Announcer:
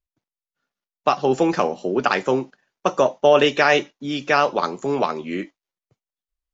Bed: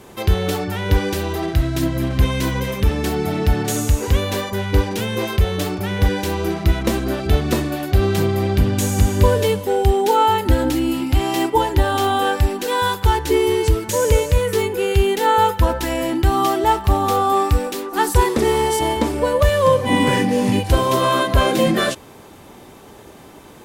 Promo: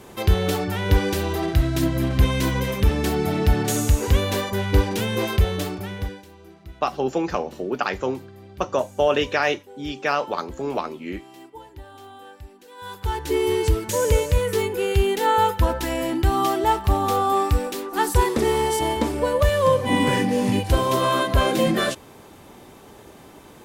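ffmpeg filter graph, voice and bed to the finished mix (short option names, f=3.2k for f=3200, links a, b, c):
-filter_complex "[0:a]adelay=5750,volume=-5dB[a];[1:a]volume=20dB,afade=t=out:st=5.34:d=0.91:silence=0.0668344,afade=t=in:st=12.76:d=0.77:silence=0.0841395[b];[a][b]amix=inputs=2:normalize=0"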